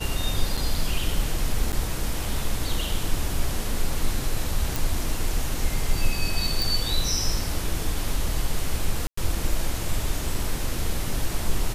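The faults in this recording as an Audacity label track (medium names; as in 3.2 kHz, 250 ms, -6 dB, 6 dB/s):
0.570000	0.580000	dropout 5.2 ms
1.720000	1.730000	dropout 7.8 ms
4.760000	4.760000	pop
6.620000	6.620000	pop
9.070000	9.170000	dropout 104 ms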